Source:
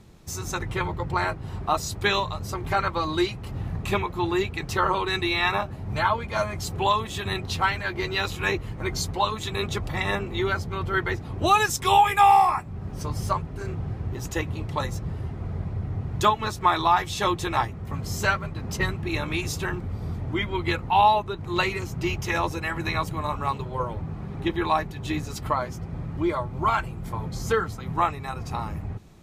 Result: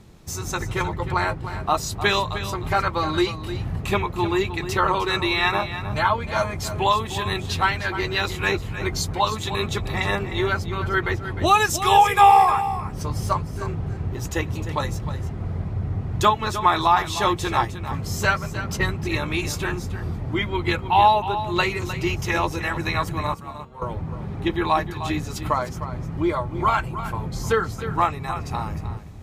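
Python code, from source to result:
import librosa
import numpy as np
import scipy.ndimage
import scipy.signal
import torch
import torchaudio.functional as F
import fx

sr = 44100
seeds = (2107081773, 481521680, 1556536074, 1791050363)

y = fx.peak_eq(x, sr, hz=480.0, db=14.0, octaves=0.22, at=(11.95, 12.56))
y = fx.comb_fb(y, sr, f0_hz=230.0, decay_s=0.36, harmonics='all', damping=0.0, mix_pct=90, at=(23.34, 23.82))
y = y + 10.0 ** (-11.5 / 20.0) * np.pad(y, (int(307 * sr / 1000.0), 0))[:len(y)]
y = y * 10.0 ** (2.5 / 20.0)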